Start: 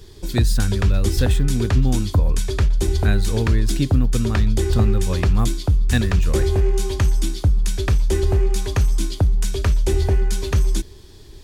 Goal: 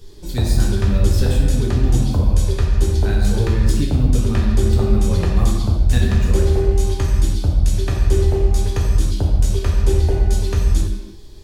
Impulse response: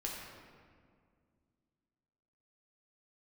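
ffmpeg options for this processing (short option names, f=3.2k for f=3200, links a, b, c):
-filter_complex "[0:a]equalizer=f=1.8k:w=1.1:g=-4[a];[1:a]atrim=start_sample=2205,afade=t=out:st=0.39:d=0.01,atrim=end_sample=17640[b];[a][b]afir=irnorm=-1:irlink=0"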